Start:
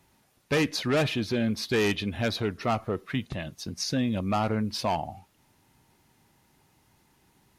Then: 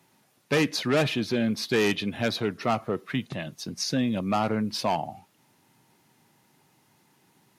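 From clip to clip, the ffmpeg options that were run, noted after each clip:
ffmpeg -i in.wav -af "highpass=frequency=120:width=0.5412,highpass=frequency=120:width=1.3066,volume=1.5dB" out.wav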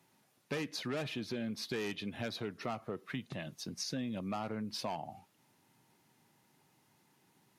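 ffmpeg -i in.wav -af "acompressor=threshold=-31dB:ratio=2.5,volume=-6.5dB" out.wav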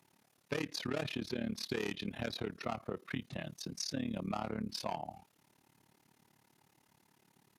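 ffmpeg -i in.wav -af "tremolo=f=36:d=0.919,volume=4dB" out.wav

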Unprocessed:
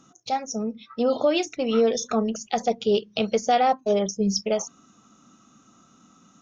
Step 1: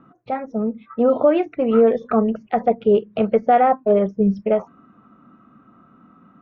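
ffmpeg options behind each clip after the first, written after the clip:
ffmpeg -i in.wav -af "lowpass=frequency=1900:width=0.5412,lowpass=frequency=1900:width=1.3066,bandreject=frequency=810:width=18,volume=6dB" out.wav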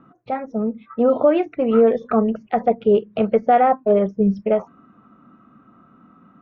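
ffmpeg -i in.wav -af anull out.wav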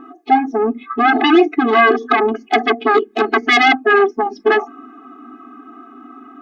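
ffmpeg -i in.wav -af "aeval=exprs='0.596*sin(PI/2*3.98*val(0)/0.596)':channel_layout=same,afftfilt=real='re*eq(mod(floor(b*sr/1024/220),2),1)':imag='im*eq(mod(floor(b*sr/1024/220),2),1)':win_size=1024:overlap=0.75" out.wav

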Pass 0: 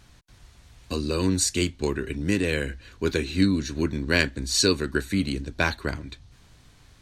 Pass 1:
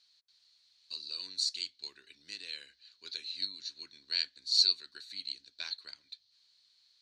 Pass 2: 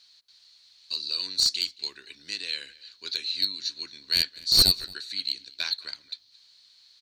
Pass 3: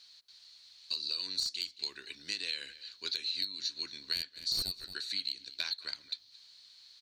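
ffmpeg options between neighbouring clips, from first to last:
ffmpeg -i in.wav -af "bandpass=frequency=4300:width_type=q:width=7.5:csg=0,volume=2dB" out.wav
ffmpeg -i in.wav -filter_complex "[0:a]acontrast=27,aeval=exprs='0.376*(cos(1*acos(clip(val(0)/0.376,-1,1)))-cos(1*PI/2))+0.168*(cos(2*acos(clip(val(0)/0.376,-1,1)))-cos(2*PI/2))+0.0668*(cos(5*acos(clip(val(0)/0.376,-1,1)))-cos(5*PI/2))+0.0119*(cos(8*acos(clip(val(0)/0.376,-1,1)))-cos(8*PI/2))':channel_layout=same,asplit=2[link_01][link_02];[link_02]adelay=221.6,volume=-21dB,highshelf=frequency=4000:gain=-4.99[link_03];[link_01][link_03]amix=inputs=2:normalize=0" out.wav
ffmpeg -i in.wav -af "acompressor=threshold=-31dB:ratio=12" out.wav

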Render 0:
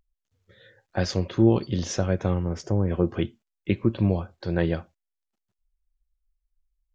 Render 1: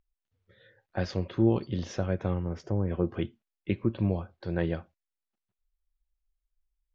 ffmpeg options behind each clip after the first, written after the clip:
ffmpeg -i in.wav -af "lowpass=3900,volume=-5dB" out.wav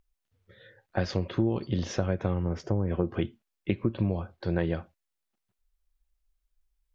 ffmpeg -i in.wav -af "acompressor=threshold=-27dB:ratio=6,volume=5dB" out.wav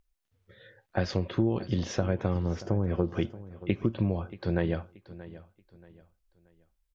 ffmpeg -i in.wav -af "aecho=1:1:630|1260|1890:0.141|0.0452|0.0145" out.wav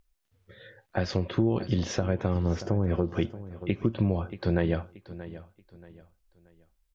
ffmpeg -i in.wav -af "alimiter=limit=-17dB:level=0:latency=1:release=313,volume=4dB" out.wav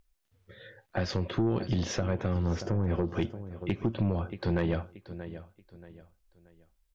ffmpeg -i in.wav -af "asoftclip=type=tanh:threshold=-19.5dB" out.wav

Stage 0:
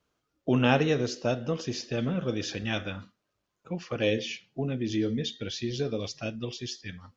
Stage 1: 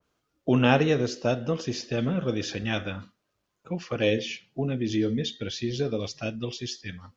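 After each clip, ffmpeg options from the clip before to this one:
ffmpeg -i in.wav -af "adynamicequalizer=threshold=0.00794:dfrequency=2400:dqfactor=0.7:tfrequency=2400:tqfactor=0.7:attack=5:release=100:ratio=0.375:range=1.5:mode=cutabove:tftype=highshelf,volume=2.5dB" out.wav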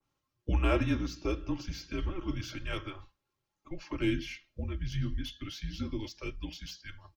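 ffmpeg -i in.wav -filter_complex "[0:a]aecho=1:1:3.9:0.51,afreqshift=-190,acrossover=split=340|2500[link_01][link_02][link_03];[link_03]asoftclip=type=tanh:threshold=-33dB[link_04];[link_01][link_02][link_04]amix=inputs=3:normalize=0,volume=-7.5dB" out.wav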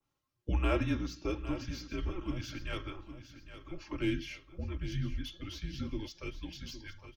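ffmpeg -i in.wav -af "aecho=1:1:810|1620|2430|3240:0.237|0.0972|0.0399|0.0163,volume=-2.5dB" out.wav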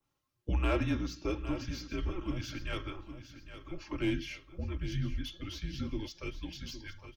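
ffmpeg -i in.wav -af "asoftclip=type=tanh:threshold=-22dB,volume=1.5dB" out.wav

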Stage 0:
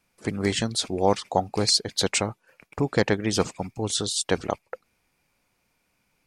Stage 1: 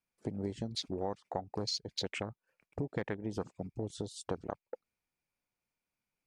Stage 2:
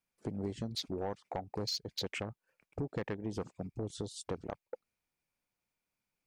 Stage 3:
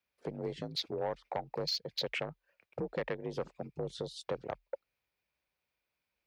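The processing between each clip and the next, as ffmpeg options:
ffmpeg -i in.wav -af "afwtdn=0.0398,acompressor=threshold=-31dB:ratio=4,volume=-3.5dB" out.wav
ffmpeg -i in.wav -af "asoftclip=type=tanh:threshold=-28dB,volume=1dB" out.wav
ffmpeg -i in.wav -af "afreqshift=40,equalizer=frequency=250:width_type=o:width=1:gain=-7,equalizer=frequency=500:width_type=o:width=1:gain=5,equalizer=frequency=2000:width_type=o:width=1:gain=4,equalizer=frequency=4000:width_type=o:width=1:gain=5,equalizer=frequency=8000:width_type=o:width=1:gain=-10" out.wav

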